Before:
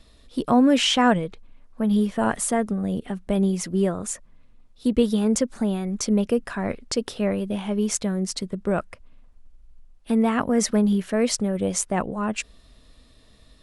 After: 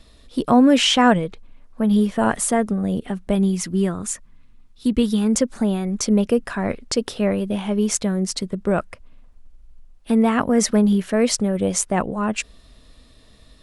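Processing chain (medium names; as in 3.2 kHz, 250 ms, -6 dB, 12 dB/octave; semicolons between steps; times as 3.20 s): 3.35–5.35 s: peaking EQ 570 Hz -9 dB 0.94 oct; trim +3.5 dB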